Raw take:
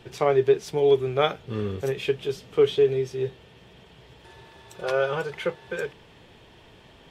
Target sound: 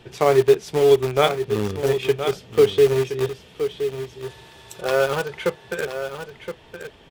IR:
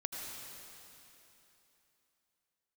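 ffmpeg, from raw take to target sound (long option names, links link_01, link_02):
-filter_complex "[0:a]asettb=1/sr,asplit=3[link_01][link_02][link_03];[link_01]atrim=end=3.274[link_04];[link_02]atrim=start=3.27:end=4.81,asetpts=PTS-STARTPTS,afade=type=in:duration=0.004:curve=qsin,afade=type=out:start_time=1.536:duration=0.004:curve=qsin,highshelf=frequency=3800:gain=10.5[link_05];[link_03]atrim=start=4.806[link_06];[link_04][link_05]acrossfade=duration=0.004:curve1=hsin:curve2=qsin[link_07];[link_07][link_06]acrossfade=duration=0.004:curve1=qsin:curve2=hsin,asplit=2[link_08][link_09];[link_09]acrusher=bits=3:mix=0:aa=0.000001,volume=-8dB[link_10];[link_08][link_10]amix=inputs=2:normalize=0,aecho=1:1:1020:0.335,volume=1.5dB"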